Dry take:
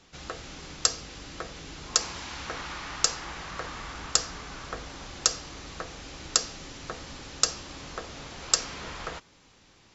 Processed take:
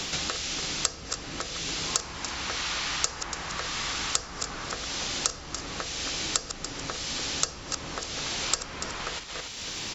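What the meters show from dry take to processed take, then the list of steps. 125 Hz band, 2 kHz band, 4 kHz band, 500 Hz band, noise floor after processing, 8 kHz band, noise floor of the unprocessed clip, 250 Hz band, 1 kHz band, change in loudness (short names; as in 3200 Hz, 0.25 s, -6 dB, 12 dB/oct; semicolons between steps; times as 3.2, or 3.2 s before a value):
+2.5 dB, +4.5 dB, +2.5 dB, +1.5 dB, -41 dBFS, n/a, -59 dBFS, +3.5 dB, +2.0 dB, +0.5 dB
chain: reverse delay 0.165 s, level -11 dB; echo 0.287 s -14.5 dB; three-band squash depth 100%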